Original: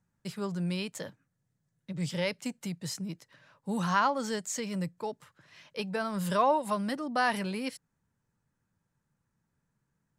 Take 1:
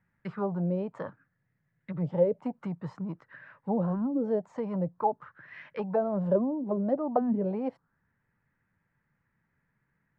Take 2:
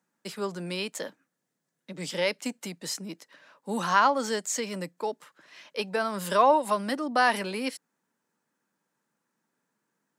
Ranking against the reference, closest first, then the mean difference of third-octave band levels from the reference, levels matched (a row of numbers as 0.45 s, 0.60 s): 2, 1; 2.5 dB, 10.0 dB